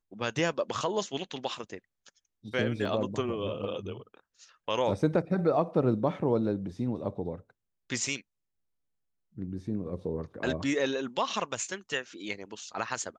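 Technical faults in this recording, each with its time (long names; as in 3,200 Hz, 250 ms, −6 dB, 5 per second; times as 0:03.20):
0:02.85: drop-out 3.4 ms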